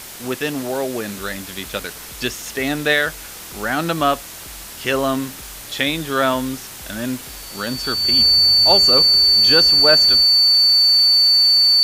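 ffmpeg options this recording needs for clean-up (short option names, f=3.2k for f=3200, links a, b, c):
-af "bandreject=f=4.5k:w=30,afftdn=nr=28:nf=-35"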